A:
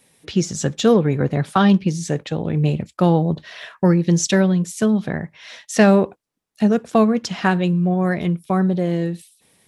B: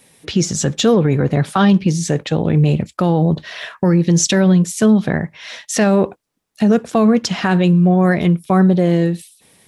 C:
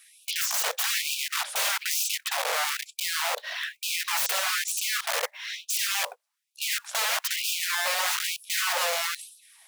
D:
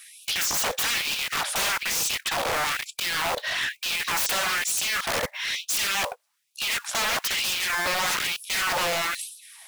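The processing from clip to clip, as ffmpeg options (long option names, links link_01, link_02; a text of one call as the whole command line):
ffmpeg -i in.wav -af "alimiter=limit=-12dB:level=0:latency=1:release=22,volume=6.5dB" out.wav
ffmpeg -i in.wav -af "aeval=exprs='(mod(8.41*val(0)+1,2)-1)/8.41':channel_layout=same,acrusher=bits=5:mode=log:mix=0:aa=0.000001,afftfilt=real='re*gte(b*sr/1024,430*pow(2400/430,0.5+0.5*sin(2*PI*1.1*pts/sr)))':imag='im*gte(b*sr/1024,430*pow(2400/430,0.5+0.5*sin(2*PI*1.1*pts/sr)))':win_size=1024:overlap=0.75,volume=-2.5dB" out.wav
ffmpeg -i in.wav -af "asoftclip=type=hard:threshold=-31.5dB,volume=8dB" out.wav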